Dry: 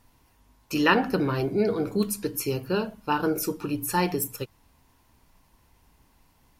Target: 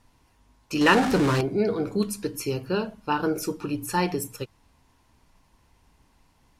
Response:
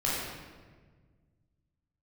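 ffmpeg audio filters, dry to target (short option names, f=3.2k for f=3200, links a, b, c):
-filter_complex "[0:a]asettb=1/sr,asplit=3[a][b][c];[a]atrim=end=0.814[d];[b]atrim=start=0.81:end=1.41,asetpts=PTS-STARTPTS,afade=t=in:d=0.004:c=qsin,afade=t=out:st=0.596:d=0.004:c=qsin,aeval=exprs='val(0)+0.5*0.075*sgn(val(0))':c=same[e];[c]atrim=start=1.406[f];[d][e]acrossfade=d=0.004:c1=hsin:c2=qsin[g];[g][f]acrossfade=d=0.004:c1=qsin:c2=hsin,lowpass=9.6k"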